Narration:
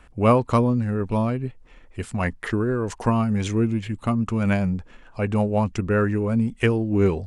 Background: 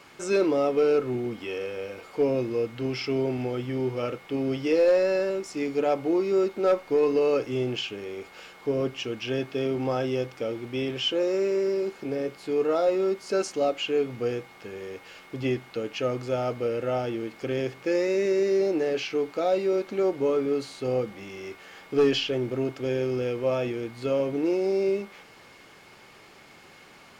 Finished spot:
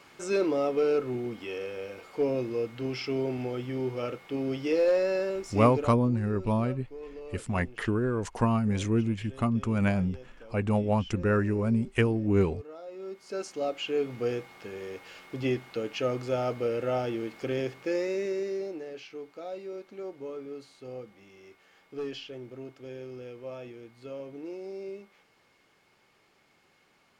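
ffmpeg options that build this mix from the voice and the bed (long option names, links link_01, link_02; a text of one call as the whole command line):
ffmpeg -i stem1.wav -i stem2.wav -filter_complex "[0:a]adelay=5350,volume=-4.5dB[link_01];[1:a]volume=15.5dB,afade=type=out:start_time=5.7:duration=0.25:silence=0.141254,afade=type=in:start_time=12.88:duration=1.42:silence=0.112202,afade=type=out:start_time=17.42:duration=1.43:silence=0.223872[link_02];[link_01][link_02]amix=inputs=2:normalize=0" out.wav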